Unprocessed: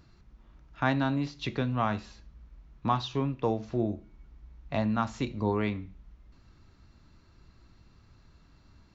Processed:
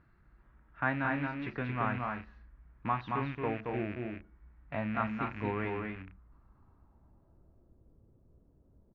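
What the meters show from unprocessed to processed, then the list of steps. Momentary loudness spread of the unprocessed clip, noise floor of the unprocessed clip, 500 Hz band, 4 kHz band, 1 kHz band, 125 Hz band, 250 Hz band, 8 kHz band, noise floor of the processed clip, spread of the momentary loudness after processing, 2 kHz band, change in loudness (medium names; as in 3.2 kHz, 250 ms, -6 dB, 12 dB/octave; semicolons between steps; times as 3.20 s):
7 LU, -60 dBFS, -5.0 dB, -12.5 dB, -2.5 dB, -6.0 dB, -5.5 dB, no reading, -66 dBFS, 10 LU, +1.5 dB, -4.5 dB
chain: rattle on loud lows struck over -39 dBFS, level -26 dBFS; low-pass sweep 1.7 kHz -> 500 Hz, 5.69–7.76 s; loudspeakers at several distances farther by 77 m -4 dB, 88 m -11 dB; trim -7.5 dB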